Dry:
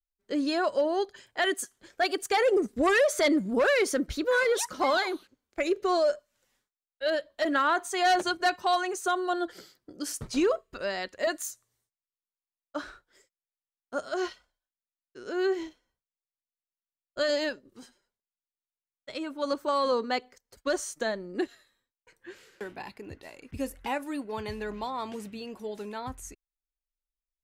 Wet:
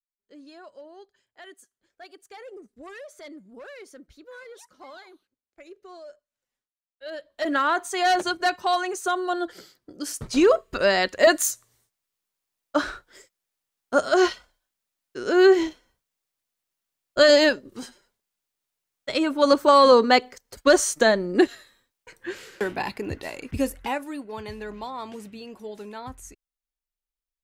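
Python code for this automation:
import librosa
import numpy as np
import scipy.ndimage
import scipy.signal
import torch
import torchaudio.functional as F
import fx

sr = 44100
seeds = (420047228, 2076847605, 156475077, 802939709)

y = fx.gain(x, sr, db=fx.line((6.04, -19.0), (7.08, -9.5), (7.5, 2.5), (10.19, 2.5), (10.69, 12.0), (23.39, 12.0), (24.16, -0.5)))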